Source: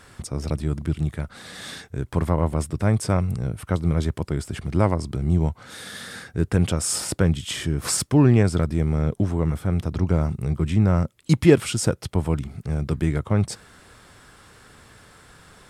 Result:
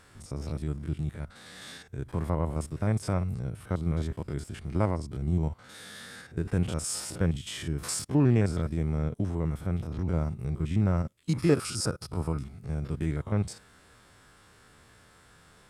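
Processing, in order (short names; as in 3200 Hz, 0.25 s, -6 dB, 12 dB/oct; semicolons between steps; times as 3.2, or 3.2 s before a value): stepped spectrum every 50 ms; 11.37–12.45 thirty-one-band EQ 1250 Hz +10 dB, 2000 Hz -3 dB, 3150 Hz -7 dB, 5000 Hz +9 dB, 10000 Hz +7 dB; gain -6.5 dB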